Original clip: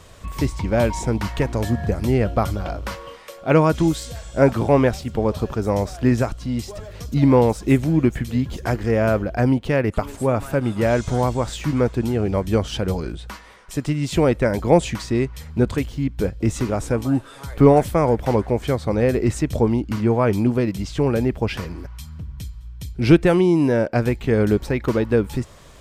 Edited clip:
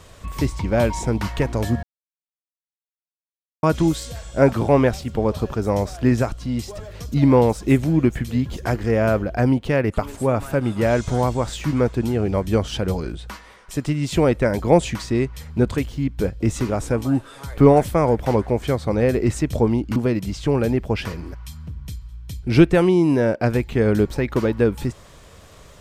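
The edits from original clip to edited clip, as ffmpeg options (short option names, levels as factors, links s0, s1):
-filter_complex "[0:a]asplit=4[s0][s1][s2][s3];[s0]atrim=end=1.83,asetpts=PTS-STARTPTS,afade=t=out:st=1.826:d=0.004:c=hsin[s4];[s1]atrim=start=1.83:end=3.63,asetpts=PTS-STARTPTS,volume=0[s5];[s2]atrim=start=3.63:end=19.962,asetpts=PTS-STARTPTS,afade=t=in:d=0.004:c=hsin[s6];[s3]atrim=start=20.478[s7];[s4][s5][s6]concat=n=3:v=0:a=1[s8];[s8][s7]acrossfade=d=0.004:c1=hsin:c2=hsin"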